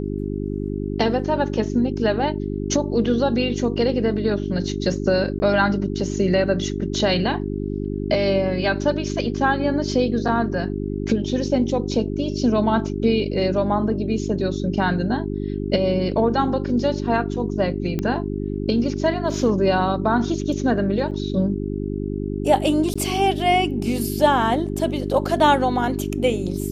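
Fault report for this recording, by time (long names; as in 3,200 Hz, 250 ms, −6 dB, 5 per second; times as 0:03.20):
mains hum 50 Hz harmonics 8 −26 dBFS
0:05.39–0:05.40: drop-out 10 ms
0:17.99: click −12 dBFS
0:21.11–0:21.12: drop-out 5.8 ms
0:22.94–0:22.95: drop-out 15 ms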